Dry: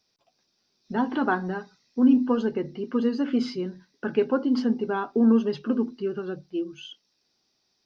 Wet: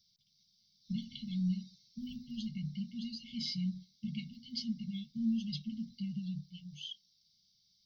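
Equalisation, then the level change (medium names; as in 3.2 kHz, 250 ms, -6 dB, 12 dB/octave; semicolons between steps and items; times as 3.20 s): dynamic bell 220 Hz, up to -6 dB, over -33 dBFS, Q 3; brick-wall FIR band-stop 220–2100 Hz; static phaser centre 2.5 kHz, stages 6; +2.5 dB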